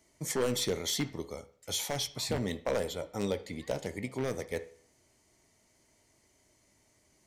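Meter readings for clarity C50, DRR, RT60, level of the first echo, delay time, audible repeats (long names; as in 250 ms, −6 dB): 15.5 dB, 10.5 dB, 0.50 s, no echo audible, no echo audible, no echo audible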